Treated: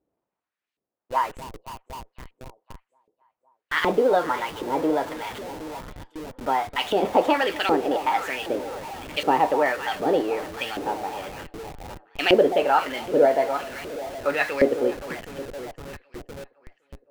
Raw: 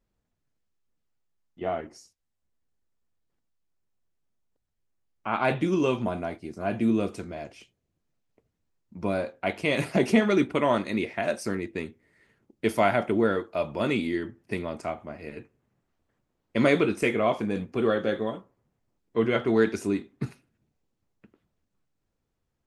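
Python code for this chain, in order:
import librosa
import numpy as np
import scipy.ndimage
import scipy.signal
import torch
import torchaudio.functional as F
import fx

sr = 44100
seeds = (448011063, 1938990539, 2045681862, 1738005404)

p1 = fx.speed_glide(x, sr, from_pct=144, to_pct=121)
p2 = p1 + fx.echo_alternate(p1, sr, ms=256, hz=950.0, feedback_pct=71, wet_db=-13.5, dry=0)
p3 = fx.filter_lfo_bandpass(p2, sr, shape='saw_up', hz=1.3, low_hz=360.0, high_hz=3000.0, q=1.4)
p4 = fx.schmitt(p3, sr, flips_db=-54.5)
p5 = p3 + (p4 * librosa.db_to_amplitude(-12.0))
y = p5 * librosa.db_to_amplitude(8.0)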